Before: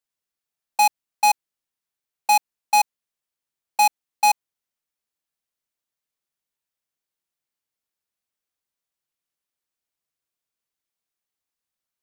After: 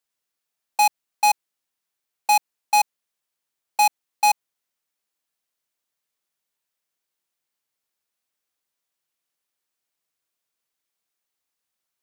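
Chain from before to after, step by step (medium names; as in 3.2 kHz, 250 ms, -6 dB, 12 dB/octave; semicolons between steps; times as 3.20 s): bass shelf 190 Hz -7.5 dB; in parallel at +3 dB: peak limiter -24 dBFS, peak gain reduction 12 dB; on the sum: trim -3 dB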